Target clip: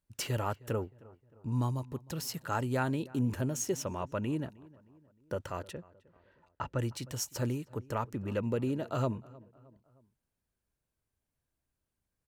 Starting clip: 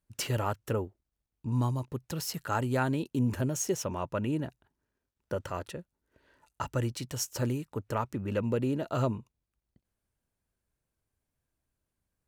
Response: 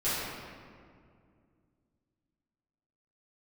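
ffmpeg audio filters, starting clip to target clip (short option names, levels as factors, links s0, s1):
-filter_complex "[0:a]asettb=1/sr,asplit=3[s0][s1][s2];[s0]atrim=end=5.734[s3];[s1]atrim=start=5.73:end=6.79,asetpts=PTS-STARTPTS,afade=t=in:d=0.004:c=qsin,afade=t=out:st=1.056:d=0.004:c=qsin,lowpass=3300[s4];[s2]atrim=start=6.786[s5];[s3][s4]acrossfade=d=0.004:c1=hsin:c2=qsin[s6];[s6][s5]acrossfade=d=0.004:c1=qsin:c2=hsin,asplit=2[s7][s8];[s8]adelay=310,lowpass=f=2000:p=1,volume=0.0841,asplit=2[s9][s10];[s10]adelay=310,lowpass=f=2000:p=1,volume=0.49,asplit=2[s11][s12];[s12]adelay=310,lowpass=f=2000:p=1,volume=0.49[s13];[s7][s9][s11][s13]amix=inputs=4:normalize=0,volume=0.75"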